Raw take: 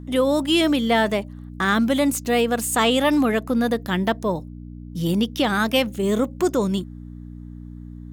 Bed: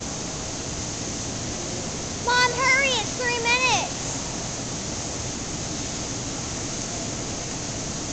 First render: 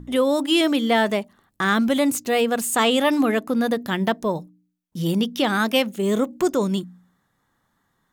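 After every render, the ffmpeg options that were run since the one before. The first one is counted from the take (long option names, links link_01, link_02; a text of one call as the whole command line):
ffmpeg -i in.wav -af "bandreject=frequency=60:width_type=h:width=4,bandreject=frequency=120:width_type=h:width=4,bandreject=frequency=180:width_type=h:width=4,bandreject=frequency=240:width_type=h:width=4,bandreject=frequency=300:width_type=h:width=4" out.wav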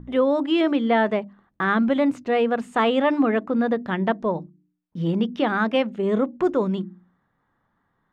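ffmpeg -i in.wav -af "lowpass=2000,bandreject=frequency=50:width_type=h:width=6,bandreject=frequency=100:width_type=h:width=6,bandreject=frequency=150:width_type=h:width=6,bandreject=frequency=200:width_type=h:width=6,bandreject=frequency=250:width_type=h:width=6,bandreject=frequency=300:width_type=h:width=6,bandreject=frequency=350:width_type=h:width=6" out.wav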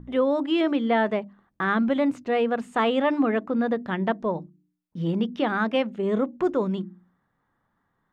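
ffmpeg -i in.wav -af "volume=-2.5dB" out.wav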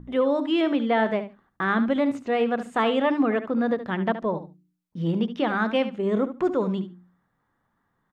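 ffmpeg -i in.wav -af "aecho=1:1:72|144:0.251|0.0377" out.wav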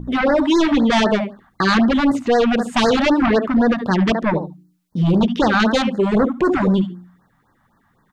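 ffmpeg -i in.wav -af "aeval=exprs='0.282*sin(PI/2*2.82*val(0)/0.282)':channel_layout=same,afftfilt=real='re*(1-between(b*sr/1024,380*pow(2900/380,0.5+0.5*sin(2*PI*3.9*pts/sr))/1.41,380*pow(2900/380,0.5+0.5*sin(2*PI*3.9*pts/sr))*1.41))':imag='im*(1-between(b*sr/1024,380*pow(2900/380,0.5+0.5*sin(2*PI*3.9*pts/sr))/1.41,380*pow(2900/380,0.5+0.5*sin(2*PI*3.9*pts/sr))*1.41))':win_size=1024:overlap=0.75" out.wav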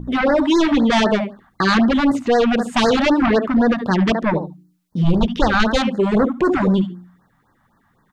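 ffmpeg -i in.wav -filter_complex "[0:a]asplit=3[link_01][link_02][link_03];[link_01]afade=type=out:start_time=5.04:duration=0.02[link_04];[link_02]asubboost=boost=5.5:cutoff=92,afade=type=in:start_time=5.04:duration=0.02,afade=type=out:start_time=5.76:duration=0.02[link_05];[link_03]afade=type=in:start_time=5.76:duration=0.02[link_06];[link_04][link_05][link_06]amix=inputs=3:normalize=0" out.wav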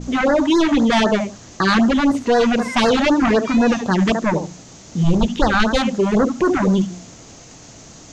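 ffmpeg -i in.wav -i bed.wav -filter_complex "[1:a]volume=-11.5dB[link_01];[0:a][link_01]amix=inputs=2:normalize=0" out.wav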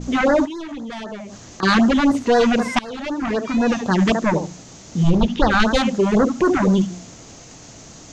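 ffmpeg -i in.wav -filter_complex "[0:a]asettb=1/sr,asplit=3[link_01][link_02][link_03];[link_01]atrim=end=0.454[link_04];[link_02]atrim=start=0.45:end=1.63,asetpts=PTS-STARTPTS,afade=type=in:duration=0.004:curve=qsin,afade=type=out:start_time=1.176:duration=0.004:curve=qsin,acompressor=threshold=-31dB:ratio=5:attack=3.2:release=140:knee=1:detection=peak[link_05];[link_03]atrim=start=1.626[link_06];[link_04][link_05]acrossfade=duration=0.004:curve1=hsin:curve2=qsin[link_07];[link_07][link_06]acrossfade=duration=0.004:curve1=qsin:curve2=hsin,asettb=1/sr,asplit=3[link_08][link_09][link_10];[link_08]atrim=end=5.104[link_11];[link_09]atrim=start=5.1:end=5.51,asetpts=PTS-STARTPTS,afade=type=in:duration=0.004:curve=qsin,afade=type=out:start_time=0.406:duration=0.004:curve=qsin,lowpass=4900[link_12];[link_10]atrim=start=5.506[link_13];[link_11][link_12]acrossfade=duration=0.004:curve1=hsin:curve2=qsin[link_14];[link_14][link_13]acrossfade=duration=0.004:curve1=qsin:curve2=hsin,asplit=2[link_15][link_16];[link_15]atrim=end=2.79,asetpts=PTS-STARTPTS,afade=type=out:start_time=2.786:duration=0.004:curve=hsin:silence=0.0668344[link_17];[link_16]atrim=start=2.79,asetpts=PTS-STARTPTS,afade=type=in:duration=1.22:silence=0.0668344[link_18];[link_17][link_18]concat=n=2:v=0:a=1" out.wav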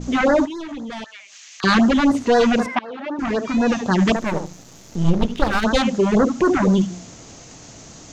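ffmpeg -i in.wav -filter_complex "[0:a]asettb=1/sr,asplit=3[link_01][link_02][link_03];[link_01]atrim=end=1.044[link_04];[link_02]atrim=start=1.04:end=1.64,asetpts=PTS-STARTPTS,afade=type=in:duration=0.004:curve=qsin,afade=type=out:start_time=0.596:duration=0.004:curve=qsin,highpass=frequency=2400:width_type=q:width=2.2[link_05];[link_03]atrim=start=1.636[link_06];[link_04][link_05]acrossfade=duration=0.004:curve1=hsin:curve2=qsin[link_07];[link_07][link_06]acrossfade=duration=0.004:curve1=qsin:curve2=hsin,asettb=1/sr,asplit=3[link_08][link_09][link_10];[link_08]atrim=end=2.664[link_11];[link_09]atrim=start=2.66:end=3.19,asetpts=PTS-STARTPTS,afade=type=in:duration=0.004:curve=qsin,afade=type=out:start_time=0.526:duration=0.004:curve=qsin,highpass=280,lowpass=2200[link_12];[link_10]atrim=start=3.186[link_13];[link_11][link_12]acrossfade=duration=0.004:curve1=hsin:curve2=qsin[link_14];[link_14][link_13]acrossfade=duration=0.004:curve1=qsin:curve2=hsin,asettb=1/sr,asplit=3[link_15][link_16][link_17];[link_15]atrim=end=4.164[link_18];[link_16]atrim=start=4.16:end=5.64,asetpts=PTS-STARTPTS,afade=type=in:duration=0.004:curve=qsin,afade=type=out:start_time=1.476:duration=0.004:curve=qsin,aeval=exprs='if(lt(val(0),0),0.251*val(0),val(0))':channel_layout=same[link_19];[link_17]atrim=start=5.636[link_20];[link_18][link_19]acrossfade=duration=0.004:curve1=hsin:curve2=qsin[link_21];[link_21][link_20]acrossfade=duration=0.004:curve1=qsin:curve2=hsin" out.wav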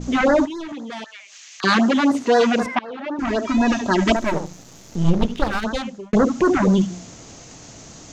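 ffmpeg -i in.wav -filter_complex "[0:a]asettb=1/sr,asplit=3[link_01][link_02][link_03];[link_01]atrim=end=0.724[link_04];[link_02]atrim=start=0.72:end=2.62,asetpts=PTS-STARTPTS,afade=type=in:duration=0.004:curve=qsin,afade=type=out:start_time=1.896:duration=0.004:curve=qsin,highpass=210[link_05];[link_03]atrim=start=2.616[link_06];[link_04][link_05]acrossfade=duration=0.004:curve1=hsin:curve2=qsin[link_07];[link_07][link_06]acrossfade=duration=0.004:curve1=qsin:curve2=hsin,asettb=1/sr,asplit=3[link_08][link_09][link_10];[link_08]atrim=end=3.274[link_11];[link_09]atrim=start=3.27:end=4.35,asetpts=PTS-STARTPTS,afade=type=in:duration=0.004:curve=qsin,afade=type=out:start_time=1.076:duration=0.004:curve=qsin,aecho=1:1:3.1:0.66,atrim=end_sample=47628[link_12];[link_10]atrim=start=4.346[link_13];[link_11][link_12]acrossfade=duration=0.004:curve1=hsin:curve2=qsin[link_14];[link_14][link_13]acrossfade=duration=0.004:curve1=qsin:curve2=hsin,asplit=2[link_15][link_16];[link_15]atrim=end=6.13,asetpts=PTS-STARTPTS,afade=type=out:start_time=5.25:duration=0.88[link_17];[link_16]atrim=start=6.13,asetpts=PTS-STARTPTS,afade=type=in:duration=0.004:curve=hsin[link_18];[link_17][link_18]concat=n=2:v=0:a=1" out.wav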